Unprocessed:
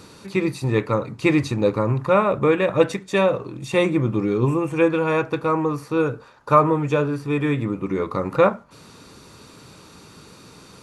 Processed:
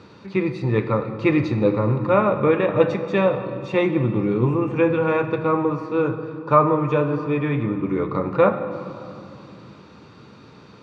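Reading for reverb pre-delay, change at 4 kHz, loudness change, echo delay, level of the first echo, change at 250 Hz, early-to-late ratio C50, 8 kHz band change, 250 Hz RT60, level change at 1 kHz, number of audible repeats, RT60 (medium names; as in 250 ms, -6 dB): 8 ms, -5.0 dB, 0.0 dB, no echo, no echo, +0.5 dB, 9.5 dB, no reading, 4.2 s, 0.0 dB, no echo, 2.9 s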